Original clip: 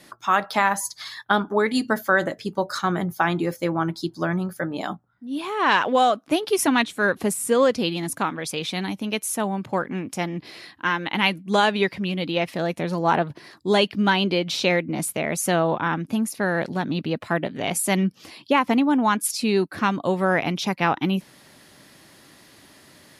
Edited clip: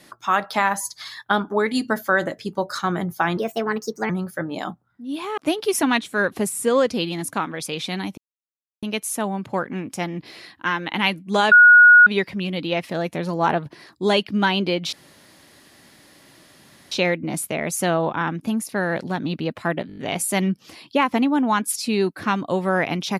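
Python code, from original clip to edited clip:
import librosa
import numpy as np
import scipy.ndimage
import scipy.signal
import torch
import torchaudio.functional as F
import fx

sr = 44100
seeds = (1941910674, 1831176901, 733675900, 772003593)

y = fx.edit(x, sr, fx.speed_span(start_s=3.37, length_s=0.95, speed=1.31),
    fx.cut(start_s=5.6, length_s=0.62),
    fx.insert_silence(at_s=9.02, length_s=0.65),
    fx.insert_tone(at_s=11.71, length_s=0.55, hz=1450.0, db=-6.0),
    fx.insert_room_tone(at_s=14.57, length_s=1.99),
    fx.stutter(start_s=17.53, slice_s=0.02, count=6), tone=tone)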